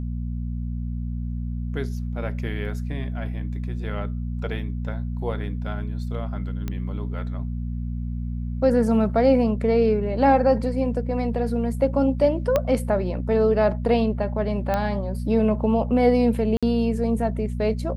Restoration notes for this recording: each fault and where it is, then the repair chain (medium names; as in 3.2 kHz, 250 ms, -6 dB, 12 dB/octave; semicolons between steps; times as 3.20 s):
hum 60 Hz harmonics 4 -28 dBFS
6.68 s: pop -16 dBFS
12.56 s: pop -8 dBFS
14.74 s: pop -12 dBFS
16.57–16.63 s: dropout 56 ms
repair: de-click; de-hum 60 Hz, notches 4; interpolate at 16.57 s, 56 ms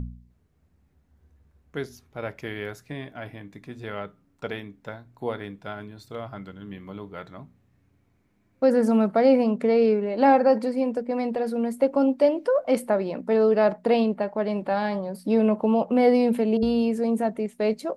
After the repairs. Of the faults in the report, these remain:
12.56 s: pop